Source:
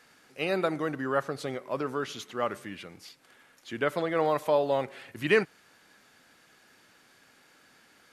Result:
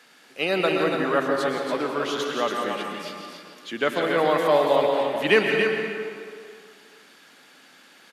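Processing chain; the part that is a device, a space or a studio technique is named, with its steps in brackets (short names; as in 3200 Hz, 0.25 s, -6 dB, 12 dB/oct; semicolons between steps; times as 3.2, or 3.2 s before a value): stadium PA (HPF 170 Hz 24 dB/oct; bell 3300 Hz +5 dB 0.77 oct; loudspeakers at several distances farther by 58 m -11 dB, 97 m -6 dB; reverb RT60 2.2 s, pre-delay 0.108 s, DRR 3 dB); gain +4 dB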